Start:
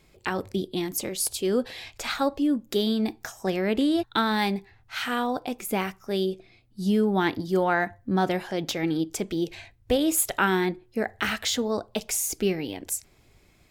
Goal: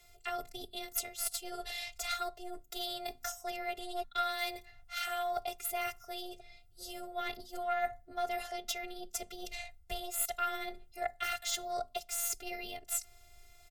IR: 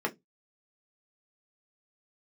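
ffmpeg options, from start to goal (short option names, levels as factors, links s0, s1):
-filter_complex "[0:a]acrossover=split=6000[s0][s1];[s1]acontrast=53[s2];[s0][s2]amix=inputs=2:normalize=0,afftfilt=real='hypot(re,im)*cos(PI*b)':imag='0':win_size=512:overlap=0.75,afreqshift=14,aeval=exprs='0.708*(cos(1*acos(clip(val(0)/0.708,-1,1)))-cos(1*PI/2))+0.0631*(cos(6*acos(clip(val(0)/0.708,-1,1)))-cos(6*PI/2))':c=same,areverse,acompressor=threshold=0.0178:ratio=4,areverse,bandreject=f=50:t=h:w=6,bandreject=f=100:t=h:w=6,bandreject=f=150:t=h:w=6,bandreject=f=200:t=h:w=6,bandreject=f=250:t=h:w=6,aecho=1:1:1.5:0.92"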